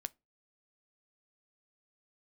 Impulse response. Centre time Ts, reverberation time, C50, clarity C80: 1 ms, 0.25 s, 29.0 dB, 37.5 dB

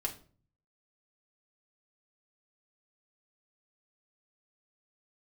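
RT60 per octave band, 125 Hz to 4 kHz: 0.80 s, 0.65 s, 0.45 s, 0.35 s, 0.35 s, 0.30 s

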